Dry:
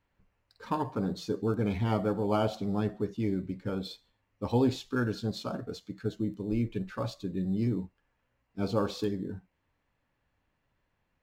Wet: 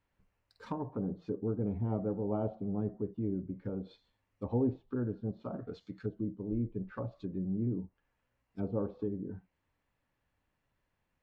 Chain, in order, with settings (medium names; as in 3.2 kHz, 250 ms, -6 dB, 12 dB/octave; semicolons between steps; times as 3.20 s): low-pass that closes with the level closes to 620 Hz, closed at -29.5 dBFS; trim -4 dB